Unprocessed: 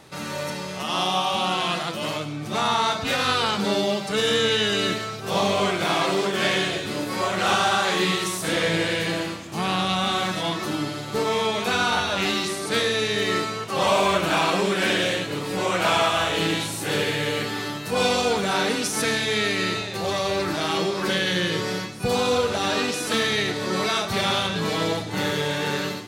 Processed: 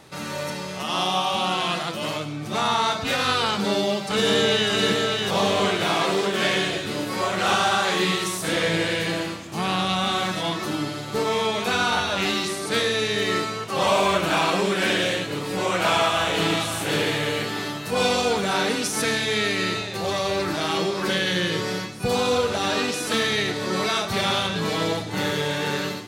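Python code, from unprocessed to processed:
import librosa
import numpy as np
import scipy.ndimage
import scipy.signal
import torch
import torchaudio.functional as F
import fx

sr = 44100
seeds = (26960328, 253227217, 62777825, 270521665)

y = fx.echo_throw(x, sr, start_s=3.5, length_s=1.2, ms=600, feedback_pct=55, wet_db=-4.0)
y = fx.echo_throw(y, sr, start_s=15.71, length_s=0.93, ms=540, feedback_pct=40, wet_db=-8.5)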